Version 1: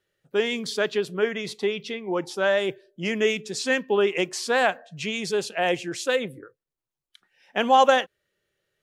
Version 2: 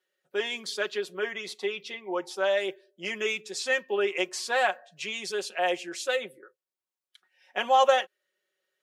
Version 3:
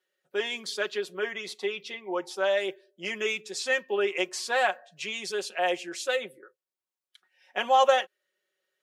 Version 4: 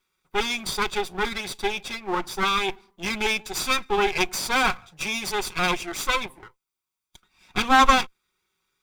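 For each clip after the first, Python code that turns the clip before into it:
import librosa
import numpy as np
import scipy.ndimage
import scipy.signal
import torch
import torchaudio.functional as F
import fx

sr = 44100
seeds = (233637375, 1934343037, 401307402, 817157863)

y1 = scipy.signal.sosfilt(scipy.signal.butter(2, 450.0, 'highpass', fs=sr, output='sos'), x)
y1 = y1 + 0.65 * np.pad(y1, (int(5.4 * sr / 1000.0), 0))[:len(y1)]
y1 = F.gain(torch.from_numpy(y1), -4.5).numpy()
y2 = y1
y3 = fx.lower_of_two(y2, sr, delay_ms=0.84)
y3 = F.gain(torch.from_numpy(y3), 7.5).numpy()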